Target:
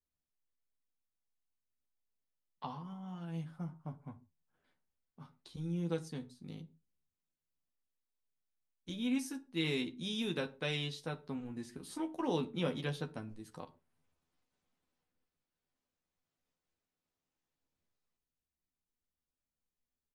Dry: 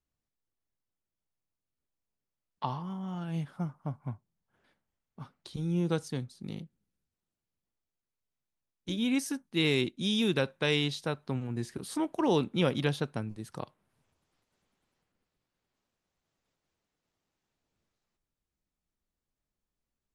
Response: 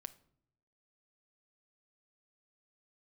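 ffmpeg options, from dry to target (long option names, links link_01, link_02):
-filter_complex "[0:a]asplit=2[link_01][link_02];[link_02]adelay=12,volume=-5dB[link_03];[link_01][link_03]amix=inputs=2:normalize=0[link_04];[1:a]atrim=start_sample=2205,afade=type=out:start_time=0.29:duration=0.01,atrim=end_sample=13230,asetrate=70560,aresample=44100[link_05];[link_04][link_05]afir=irnorm=-1:irlink=0"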